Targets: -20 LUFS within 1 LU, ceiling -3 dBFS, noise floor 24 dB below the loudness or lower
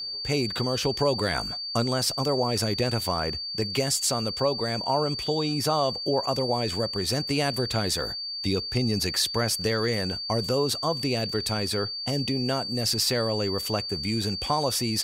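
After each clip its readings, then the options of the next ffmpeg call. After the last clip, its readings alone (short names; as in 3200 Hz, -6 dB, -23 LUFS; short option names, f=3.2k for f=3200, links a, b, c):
steady tone 4600 Hz; tone level -31 dBFS; loudness -26.0 LUFS; peak -12.0 dBFS; loudness target -20.0 LUFS
-> -af "bandreject=f=4.6k:w=30"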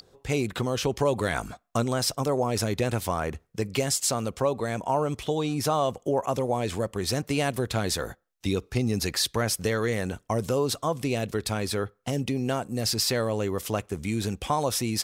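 steady tone none; loudness -27.5 LUFS; peak -12.5 dBFS; loudness target -20.0 LUFS
-> -af "volume=7.5dB"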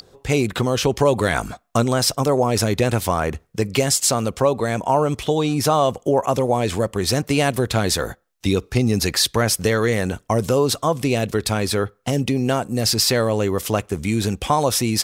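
loudness -20.0 LUFS; peak -5.0 dBFS; noise floor -58 dBFS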